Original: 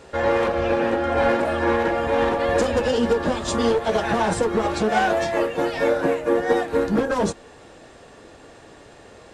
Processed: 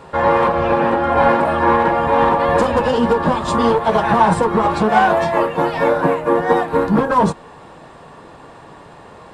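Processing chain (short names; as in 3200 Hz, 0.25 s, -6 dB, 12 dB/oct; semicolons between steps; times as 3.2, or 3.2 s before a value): fifteen-band EQ 160 Hz +10 dB, 1000 Hz +12 dB, 6300 Hz -7 dB; gain +2 dB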